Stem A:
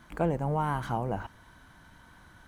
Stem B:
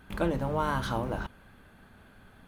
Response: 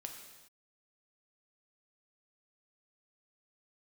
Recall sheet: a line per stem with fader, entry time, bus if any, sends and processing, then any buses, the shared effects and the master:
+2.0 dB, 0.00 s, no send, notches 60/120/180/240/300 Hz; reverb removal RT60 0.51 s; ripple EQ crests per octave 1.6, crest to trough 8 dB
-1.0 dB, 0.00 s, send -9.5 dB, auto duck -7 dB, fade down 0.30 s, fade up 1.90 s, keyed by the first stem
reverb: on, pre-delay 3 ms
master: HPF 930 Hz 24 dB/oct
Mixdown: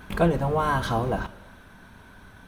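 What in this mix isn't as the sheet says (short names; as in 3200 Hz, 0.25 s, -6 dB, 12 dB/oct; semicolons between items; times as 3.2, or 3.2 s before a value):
stem B -1.0 dB -> +7.5 dB; master: missing HPF 930 Hz 24 dB/oct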